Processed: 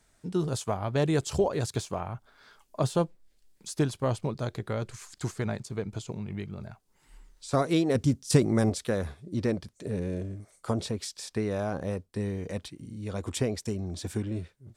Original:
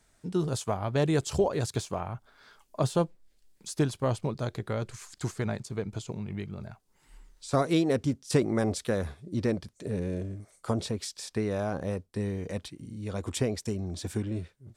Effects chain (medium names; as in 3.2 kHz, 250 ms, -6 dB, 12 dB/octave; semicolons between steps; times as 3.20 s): 7.95–8.70 s: tone controls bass +6 dB, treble +6 dB